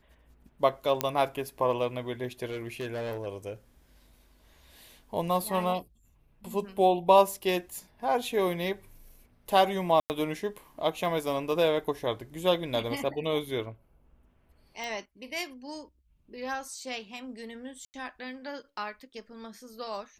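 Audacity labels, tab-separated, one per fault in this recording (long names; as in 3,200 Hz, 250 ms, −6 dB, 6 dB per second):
1.010000	1.010000	click −9 dBFS
2.500000	3.260000	clipping −30.5 dBFS
10.000000	10.100000	drop-out 99 ms
14.840000	14.840000	click
17.850000	17.940000	drop-out 89 ms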